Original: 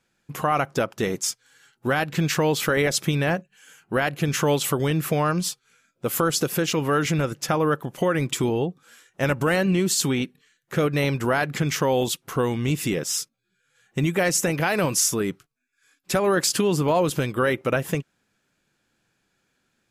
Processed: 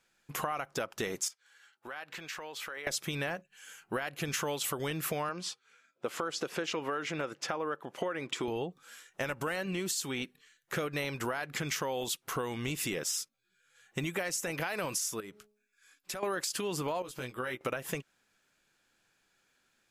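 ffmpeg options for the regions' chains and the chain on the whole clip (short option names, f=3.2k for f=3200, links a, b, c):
-filter_complex "[0:a]asettb=1/sr,asplit=3[a][b][c];[a]atrim=end=1.284[d];[b]atrim=start=1.28:end=2.87,asetpts=PTS-STARTPTS,afade=t=in:d=0.004:c=qsin,afade=t=out:st=1.586:d=0.004:c=qsin,highpass=f=1k:p=1,highshelf=f=3.8k:g=-11.5,acompressor=threshold=-38dB:ratio=4:attack=3.2:release=140:knee=1:detection=peak[e];[c]atrim=start=2.866[f];[d][e]acrossfade=d=0.004:c1=hsin:c2=qsin[g];[g][f]acrossfade=d=0.004:c1=qsin:c2=hsin,asettb=1/sr,asplit=3[h][i][j];[h]atrim=end=5.294[k];[i]atrim=start=5.29:end=8.48,asetpts=PTS-STARTPTS,afade=t=in:d=0.004:c=qsin,afade=t=out:st=3.186:d=0.004:c=qsin,aemphasis=mode=reproduction:type=bsi,acrossover=split=9000[l][m];[m]acompressor=threshold=-55dB:ratio=4:attack=1:release=60[n];[l][n]amix=inputs=2:normalize=0,highpass=330[o];[j]atrim=start=8.476[p];[k][o]acrossfade=d=0.004:c1=hsin:c2=qsin[q];[q][p]acrossfade=d=0.004:c1=qsin:c2=hsin,asettb=1/sr,asplit=3[r][s][t];[r]atrim=end=15.204[u];[s]atrim=start=15.2:end=16.23,asetpts=PTS-STARTPTS,afade=t=in:d=0.004:c=qsin,afade=t=out:st=1.026:d=0.004:c=qsin,bandreject=f=210:t=h:w=4,bandreject=f=420:t=h:w=4,bandreject=f=630:t=h:w=4,bandreject=f=840:t=h:w=4,acompressor=threshold=-38dB:ratio=3:attack=3.2:release=140:knee=1:detection=peak[v];[t]atrim=start=16.226[w];[u][v]acrossfade=d=0.004:c1=hsin:c2=qsin[x];[x][w]acrossfade=d=0.004:c1=qsin:c2=hsin,asettb=1/sr,asplit=3[y][z][aa];[y]atrim=end=17.024[ab];[z]atrim=start=17.02:end=17.61,asetpts=PTS-STARTPTS,afade=t=in:d=0.004:c=qsin,afade=t=out:st=0.586:d=0.004:c=qsin,agate=range=-10dB:threshold=-27dB:ratio=16:release=100:detection=peak,acompressor=threshold=-37dB:ratio=2:attack=3.2:release=140:knee=1:detection=peak,asplit=2[ac][ad];[ad]adelay=16,volume=-5dB[ae];[ac][ae]amix=inputs=2:normalize=0,atrim=end_sample=26019[af];[aa]atrim=start=17.606[ag];[ab][af]acrossfade=d=0.004:c1=hsin:c2=qsin[ah];[ah][ag]acrossfade=d=0.004:c1=qsin:c2=hsin,equalizer=f=130:w=0.34:g=-10,alimiter=limit=-15dB:level=0:latency=1:release=363,acompressor=threshold=-31dB:ratio=6"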